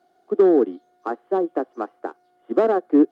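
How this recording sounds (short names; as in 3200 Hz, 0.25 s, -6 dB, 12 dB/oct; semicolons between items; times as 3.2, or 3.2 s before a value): noise floor -63 dBFS; spectral tilt -2.5 dB/oct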